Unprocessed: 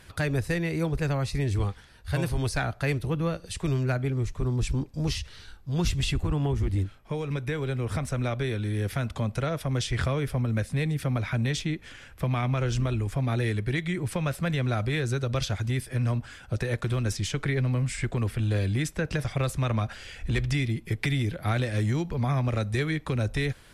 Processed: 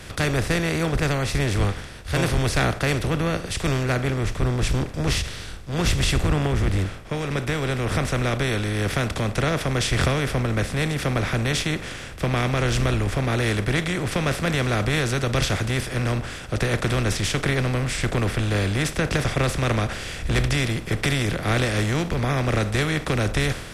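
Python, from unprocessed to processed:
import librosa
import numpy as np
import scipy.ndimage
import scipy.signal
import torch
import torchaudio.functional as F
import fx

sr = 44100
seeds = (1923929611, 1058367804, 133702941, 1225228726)

y = fx.bin_compress(x, sr, power=0.4)
y = fx.band_widen(y, sr, depth_pct=100)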